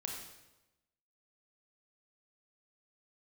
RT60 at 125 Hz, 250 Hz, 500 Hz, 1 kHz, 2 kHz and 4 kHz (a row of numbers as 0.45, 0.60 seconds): 1.1, 1.1, 1.1, 0.95, 0.90, 0.85 seconds